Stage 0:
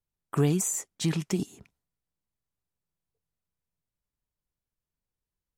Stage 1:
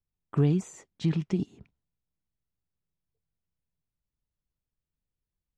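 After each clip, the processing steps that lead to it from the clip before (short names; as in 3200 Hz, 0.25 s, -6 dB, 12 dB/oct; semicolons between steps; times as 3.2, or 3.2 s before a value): Chebyshev low-pass 3700 Hz, order 2; low shelf 430 Hz +10.5 dB; gain -6.5 dB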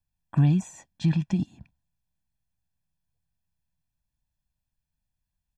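comb 1.2 ms, depth 94%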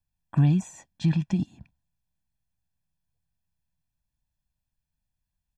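nothing audible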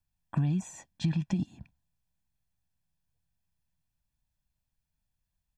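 compressor 6:1, threshold -25 dBFS, peak gain reduction 9 dB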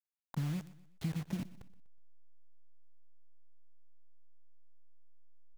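level-crossing sampler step -33.5 dBFS; feedback echo 0.123 s, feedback 40%, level -18 dB; gain -7.5 dB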